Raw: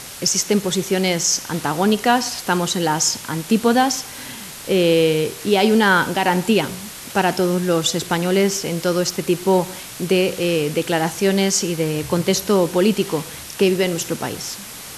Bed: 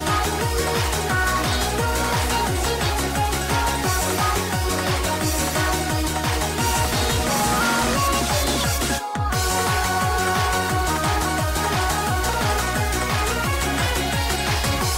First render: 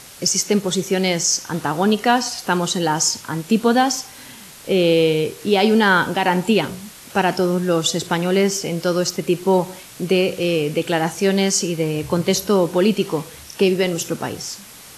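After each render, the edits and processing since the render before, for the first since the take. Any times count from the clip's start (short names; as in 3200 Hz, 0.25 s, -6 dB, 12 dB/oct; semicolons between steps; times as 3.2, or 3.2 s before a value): noise print and reduce 6 dB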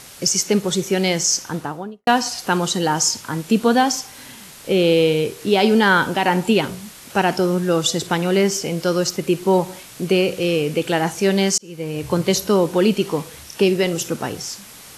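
1.37–2.07 studio fade out; 11.58–12.12 fade in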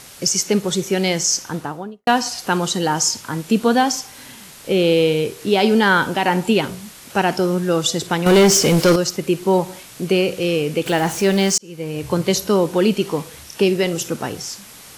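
8.26–8.96 sample leveller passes 3; 10.86–11.58 zero-crossing step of -27.5 dBFS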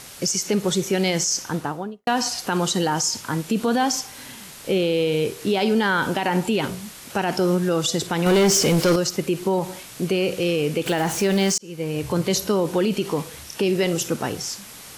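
limiter -12.5 dBFS, peak gain reduction 7.5 dB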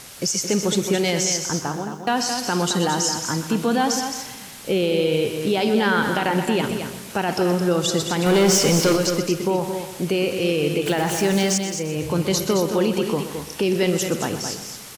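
echo 0.218 s -7.5 dB; lo-fi delay 0.125 s, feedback 55%, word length 8-bit, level -11.5 dB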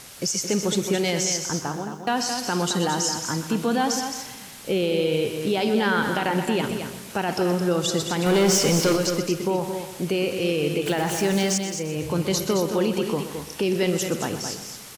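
gain -2.5 dB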